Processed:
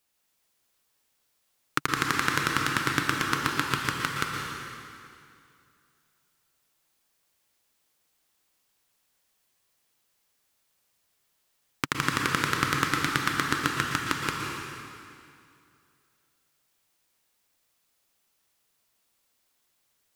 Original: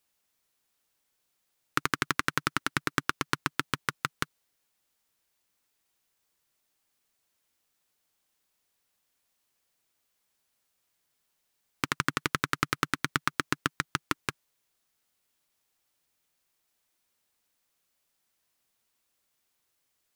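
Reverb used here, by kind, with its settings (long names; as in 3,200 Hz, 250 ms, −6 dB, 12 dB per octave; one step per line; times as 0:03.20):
dense smooth reverb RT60 2.4 s, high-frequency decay 0.9×, pre-delay 105 ms, DRR −0.5 dB
level +1 dB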